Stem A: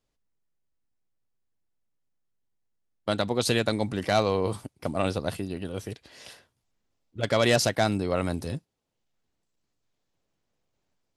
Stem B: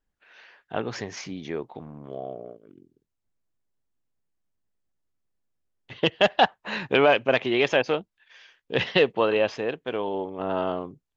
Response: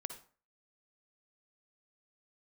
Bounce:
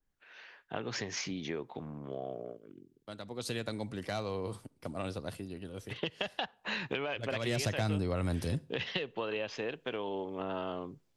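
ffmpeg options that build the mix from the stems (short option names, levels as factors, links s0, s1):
-filter_complex "[0:a]volume=0.944,afade=t=in:st=3.2:d=0.45:silence=0.375837,afade=t=in:st=7.4:d=0.28:silence=0.316228,asplit=2[s0][s1];[s1]volume=0.211[s2];[1:a]acompressor=threshold=0.0251:ratio=2,adynamicequalizer=threshold=0.00708:dfrequency=1800:dqfactor=0.7:tfrequency=1800:tqfactor=0.7:attack=5:release=100:ratio=0.375:range=2.5:mode=boostabove:tftype=highshelf,volume=0.794,asplit=2[s3][s4];[s4]volume=0.0891[s5];[2:a]atrim=start_sample=2205[s6];[s2][s5]amix=inputs=2:normalize=0[s7];[s7][s6]afir=irnorm=-1:irlink=0[s8];[s0][s3][s8]amix=inputs=3:normalize=0,equalizer=f=730:t=o:w=0.77:g=-2,acrossover=split=140[s9][s10];[s10]acompressor=threshold=0.0251:ratio=5[s11];[s9][s11]amix=inputs=2:normalize=0"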